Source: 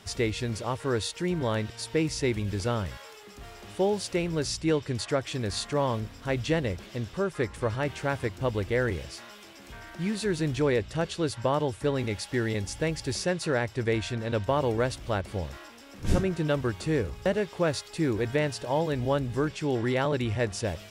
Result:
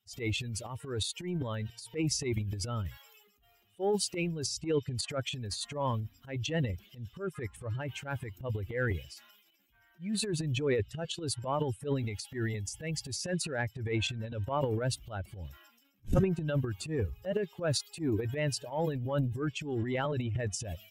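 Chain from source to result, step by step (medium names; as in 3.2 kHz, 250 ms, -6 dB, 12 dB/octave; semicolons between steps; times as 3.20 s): expander on every frequency bin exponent 2; transient shaper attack -10 dB, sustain +11 dB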